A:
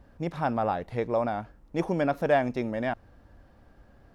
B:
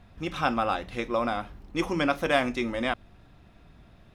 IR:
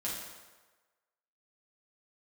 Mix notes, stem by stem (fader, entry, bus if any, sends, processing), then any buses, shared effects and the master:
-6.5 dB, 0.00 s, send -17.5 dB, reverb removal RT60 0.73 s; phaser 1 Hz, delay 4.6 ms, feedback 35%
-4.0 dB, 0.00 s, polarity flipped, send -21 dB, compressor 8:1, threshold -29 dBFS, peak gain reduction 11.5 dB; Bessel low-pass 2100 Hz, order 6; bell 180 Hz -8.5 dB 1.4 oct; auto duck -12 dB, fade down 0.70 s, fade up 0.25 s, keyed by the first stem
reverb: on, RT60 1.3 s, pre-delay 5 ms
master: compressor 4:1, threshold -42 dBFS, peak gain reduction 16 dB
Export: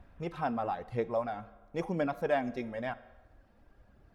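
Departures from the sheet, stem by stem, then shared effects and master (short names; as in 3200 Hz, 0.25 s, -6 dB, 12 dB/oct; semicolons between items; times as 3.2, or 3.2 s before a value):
stem B: polarity flipped; master: missing compressor 4:1, threshold -42 dBFS, peak gain reduction 16 dB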